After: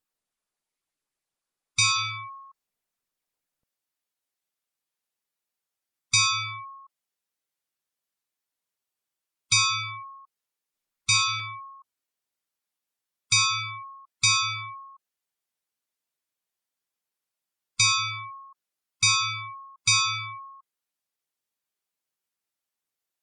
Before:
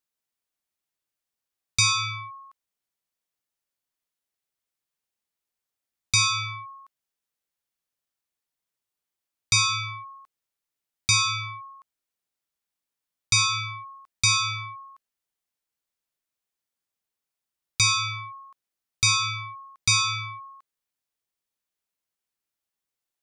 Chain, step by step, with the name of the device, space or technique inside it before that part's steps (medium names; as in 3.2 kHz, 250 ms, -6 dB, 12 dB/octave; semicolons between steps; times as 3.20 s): noise-suppressed video call (high-pass 150 Hz 6 dB/octave; spectral gate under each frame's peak -20 dB strong; Opus 32 kbps 48 kHz)